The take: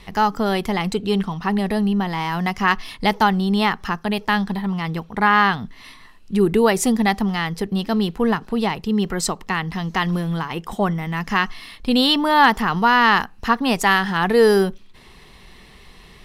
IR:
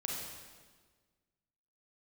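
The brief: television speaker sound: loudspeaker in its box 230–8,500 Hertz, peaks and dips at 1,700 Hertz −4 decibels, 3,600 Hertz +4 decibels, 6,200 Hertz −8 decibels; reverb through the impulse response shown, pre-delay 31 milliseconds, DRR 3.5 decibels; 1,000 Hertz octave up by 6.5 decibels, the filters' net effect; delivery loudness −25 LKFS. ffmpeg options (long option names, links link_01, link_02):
-filter_complex "[0:a]equalizer=frequency=1000:width_type=o:gain=8,asplit=2[link_01][link_02];[1:a]atrim=start_sample=2205,adelay=31[link_03];[link_02][link_03]afir=irnorm=-1:irlink=0,volume=-5.5dB[link_04];[link_01][link_04]amix=inputs=2:normalize=0,highpass=frequency=230:width=0.5412,highpass=frequency=230:width=1.3066,equalizer=frequency=1700:width_type=q:width=4:gain=-4,equalizer=frequency=3600:width_type=q:width=4:gain=4,equalizer=frequency=6200:width_type=q:width=4:gain=-8,lowpass=frequency=8500:width=0.5412,lowpass=frequency=8500:width=1.3066,volume=-9.5dB"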